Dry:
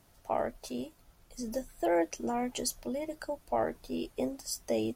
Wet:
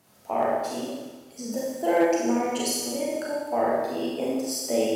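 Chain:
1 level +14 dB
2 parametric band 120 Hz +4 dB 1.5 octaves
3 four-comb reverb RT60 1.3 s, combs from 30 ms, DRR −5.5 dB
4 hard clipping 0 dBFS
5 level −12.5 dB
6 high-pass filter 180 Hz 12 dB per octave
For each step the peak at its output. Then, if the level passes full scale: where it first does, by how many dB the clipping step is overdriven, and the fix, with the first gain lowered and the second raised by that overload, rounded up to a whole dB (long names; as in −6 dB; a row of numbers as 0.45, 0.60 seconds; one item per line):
−3.5, −3.0, +4.0, 0.0, −12.5, −9.0 dBFS
step 3, 4.0 dB
step 1 +10 dB, step 5 −8.5 dB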